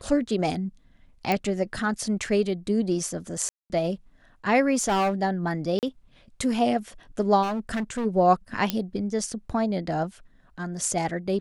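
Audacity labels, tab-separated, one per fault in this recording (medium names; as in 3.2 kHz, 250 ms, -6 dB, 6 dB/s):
1.320000	1.320000	pop -11 dBFS
3.490000	3.700000	dropout 209 ms
4.750000	5.140000	clipped -20 dBFS
5.790000	5.830000	dropout 38 ms
7.420000	8.060000	clipped -24.5 dBFS
8.700000	8.700000	pop -8 dBFS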